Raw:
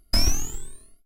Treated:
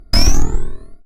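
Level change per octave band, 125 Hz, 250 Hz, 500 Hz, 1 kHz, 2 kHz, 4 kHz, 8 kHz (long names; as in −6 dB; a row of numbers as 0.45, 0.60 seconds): +11.0, +11.5, +11.0, +11.0, +9.0, +6.5, +4.5 decibels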